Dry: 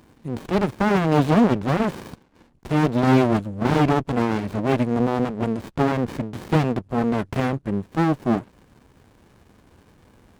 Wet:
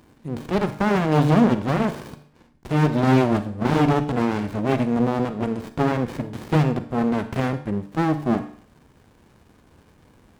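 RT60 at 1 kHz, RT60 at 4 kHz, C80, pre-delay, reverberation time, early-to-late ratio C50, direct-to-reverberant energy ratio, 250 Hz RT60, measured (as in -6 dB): 0.55 s, 0.50 s, 15.5 dB, 36 ms, 0.55 s, 12.0 dB, 10.0 dB, 0.55 s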